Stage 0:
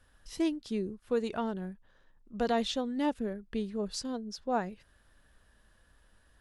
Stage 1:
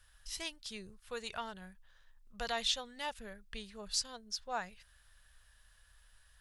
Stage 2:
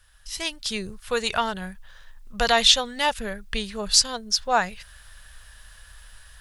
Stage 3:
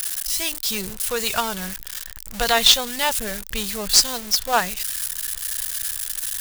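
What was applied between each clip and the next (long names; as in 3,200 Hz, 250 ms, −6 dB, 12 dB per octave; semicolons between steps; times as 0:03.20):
guitar amp tone stack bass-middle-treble 10-0-10; level +5.5 dB
automatic gain control gain up to 11 dB; level +6 dB
spike at every zero crossing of −16.5 dBFS; in parallel at −10.5 dB: log-companded quantiser 2 bits; on the sum: level −2.5 dB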